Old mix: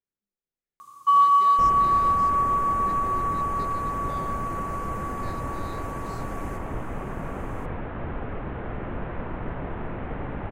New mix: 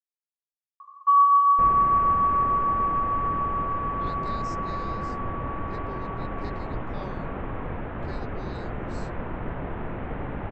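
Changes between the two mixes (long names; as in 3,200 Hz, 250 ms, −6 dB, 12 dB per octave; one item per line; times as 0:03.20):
speech: entry +2.85 s
first sound: add four-pole ladder band-pass 1,100 Hz, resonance 80%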